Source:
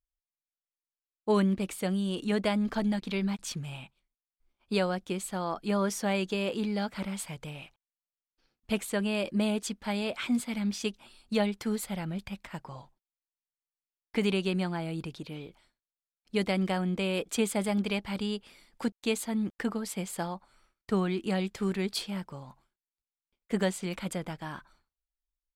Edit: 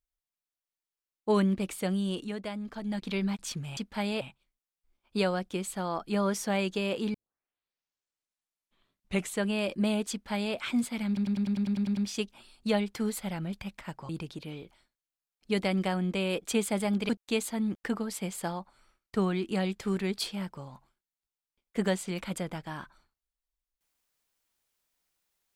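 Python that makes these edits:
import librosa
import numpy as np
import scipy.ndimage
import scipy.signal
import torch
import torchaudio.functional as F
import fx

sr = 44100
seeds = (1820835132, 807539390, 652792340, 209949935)

y = fx.edit(x, sr, fx.fade_down_up(start_s=2.13, length_s=0.9, db=-9.0, fade_s=0.2),
    fx.tape_start(start_s=6.7, length_s=2.27),
    fx.duplicate(start_s=9.67, length_s=0.44, to_s=3.77),
    fx.stutter(start_s=10.63, slice_s=0.1, count=10),
    fx.cut(start_s=12.75, length_s=2.18),
    fx.cut(start_s=17.93, length_s=0.91), tone=tone)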